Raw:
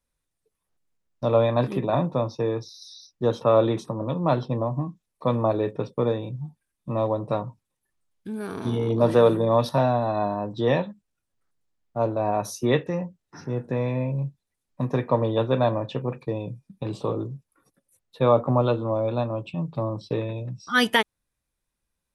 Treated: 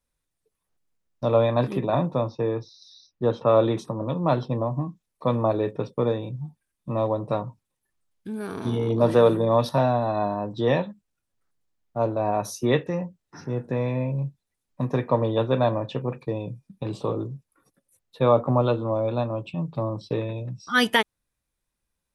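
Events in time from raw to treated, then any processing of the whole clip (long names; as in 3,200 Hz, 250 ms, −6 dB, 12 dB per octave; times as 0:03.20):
0:02.29–0:03.49: Bessel low-pass filter 3,200 Hz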